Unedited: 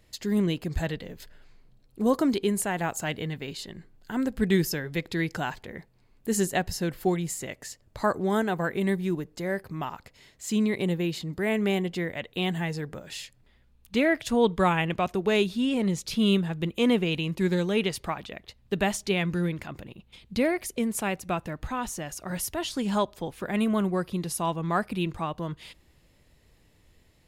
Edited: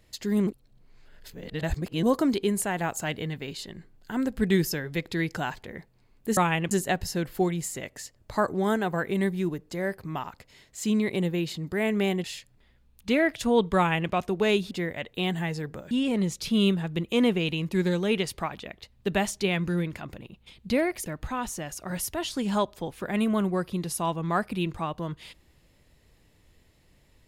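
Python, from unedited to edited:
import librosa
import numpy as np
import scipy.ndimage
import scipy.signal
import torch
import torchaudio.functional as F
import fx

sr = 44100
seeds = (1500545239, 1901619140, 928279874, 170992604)

y = fx.edit(x, sr, fx.reverse_span(start_s=0.47, length_s=1.56),
    fx.move(start_s=11.9, length_s=1.2, to_s=15.57),
    fx.duplicate(start_s=14.63, length_s=0.34, to_s=6.37),
    fx.cut(start_s=20.72, length_s=0.74), tone=tone)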